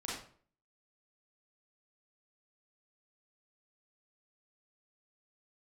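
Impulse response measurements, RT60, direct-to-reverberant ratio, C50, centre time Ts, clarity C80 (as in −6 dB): 0.50 s, −6.5 dB, 1.0 dB, 53 ms, 6.5 dB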